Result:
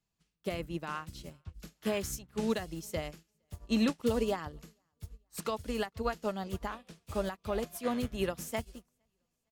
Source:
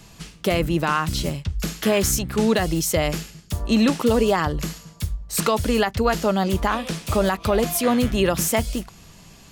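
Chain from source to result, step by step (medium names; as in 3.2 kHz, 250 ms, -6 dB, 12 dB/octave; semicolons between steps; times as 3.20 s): feedback delay 461 ms, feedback 48%, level -20 dB; upward expansion 2.5:1, over -35 dBFS; trim -9 dB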